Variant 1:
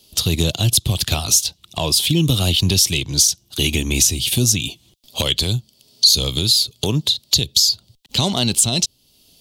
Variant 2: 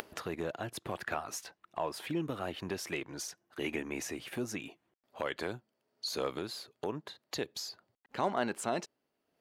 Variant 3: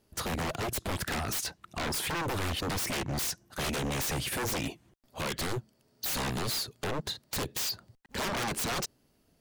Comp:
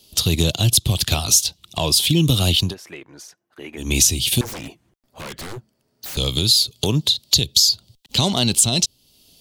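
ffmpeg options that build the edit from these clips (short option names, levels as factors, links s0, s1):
-filter_complex "[0:a]asplit=3[s0][s1][s2];[s0]atrim=end=2.75[s3];[1:a]atrim=start=2.59:end=3.92[s4];[s1]atrim=start=3.76:end=4.412[s5];[2:a]atrim=start=4.408:end=6.172[s6];[s2]atrim=start=6.168[s7];[s3][s4]acrossfade=d=0.16:c1=tri:c2=tri[s8];[s8][s5]acrossfade=d=0.16:c1=tri:c2=tri[s9];[s9][s6]acrossfade=d=0.004:c1=hsin:c2=hsin[s10];[s10][s7]acrossfade=d=0.004:c1=hsin:c2=hsin"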